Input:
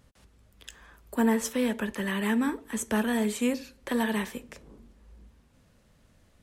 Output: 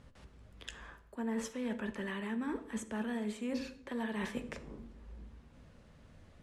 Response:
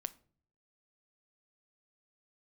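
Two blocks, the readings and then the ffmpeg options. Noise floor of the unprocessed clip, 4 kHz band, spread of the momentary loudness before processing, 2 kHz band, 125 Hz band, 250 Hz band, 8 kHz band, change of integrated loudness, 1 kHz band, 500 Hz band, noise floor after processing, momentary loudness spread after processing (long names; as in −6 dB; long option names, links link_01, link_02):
−63 dBFS, −10.0 dB, 11 LU, −10.0 dB, can't be measured, −9.5 dB, −13.5 dB, −11.0 dB, −10.5 dB, −10.0 dB, −60 dBFS, 16 LU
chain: -filter_complex "[0:a]aemphasis=mode=reproduction:type=50fm,areverse,acompressor=threshold=-37dB:ratio=20,areverse[link_01];[1:a]atrim=start_sample=2205,asetrate=22932,aresample=44100[link_02];[link_01][link_02]afir=irnorm=-1:irlink=0,volume=1.5dB"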